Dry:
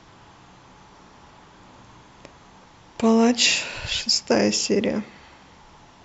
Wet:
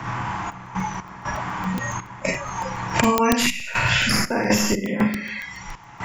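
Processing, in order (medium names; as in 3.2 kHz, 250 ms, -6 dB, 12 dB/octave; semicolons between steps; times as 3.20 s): tracing distortion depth 0.028 ms; spectral gate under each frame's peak -30 dB strong; graphic EQ 125/500/1000/2000/4000 Hz +11/-5/+9/+8/-10 dB; Schroeder reverb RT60 0.53 s, combs from 33 ms, DRR -3.5 dB; trance gate "xx.x.xxx.xxxxx." 60 bpm -12 dB; spectral noise reduction 18 dB; time-frequency box 3.46–3.68 s, 310–1900 Hz -15 dB; crackling interface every 0.14 s, samples 128, zero, from 0.52 s; three bands compressed up and down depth 100%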